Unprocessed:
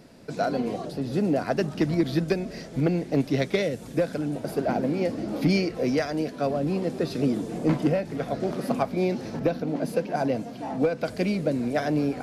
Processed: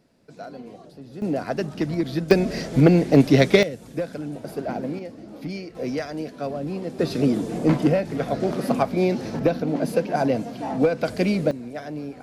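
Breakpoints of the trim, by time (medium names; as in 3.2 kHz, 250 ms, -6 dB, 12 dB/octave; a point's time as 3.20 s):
-12 dB
from 1.22 s -1 dB
from 2.31 s +9 dB
from 3.63 s -3 dB
from 4.99 s -10 dB
from 5.75 s -3 dB
from 6.99 s +4 dB
from 11.51 s -8 dB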